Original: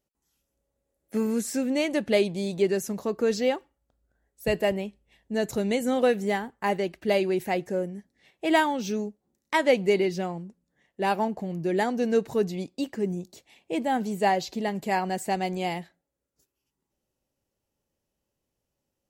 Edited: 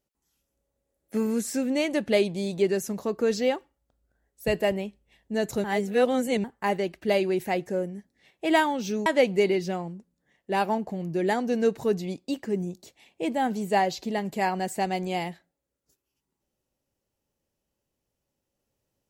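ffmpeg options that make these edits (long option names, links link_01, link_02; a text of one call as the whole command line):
ffmpeg -i in.wav -filter_complex "[0:a]asplit=4[link_01][link_02][link_03][link_04];[link_01]atrim=end=5.642[link_05];[link_02]atrim=start=5.638:end=6.442,asetpts=PTS-STARTPTS,areverse[link_06];[link_03]atrim=start=6.438:end=9.062[link_07];[link_04]atrim=start=9.558[link_08];[link_05][link_06]acrossfade=duration=0.004:curve1=hsin:curve2=hsin[link_09];[link_09][link_07]acrossfade=duration=0.004:curve1=hsin:curve2=hsin[link_10];[link_10][link_08]acrossfade=duration=0.004:curve1=hsin:curve2=hsin" out.wav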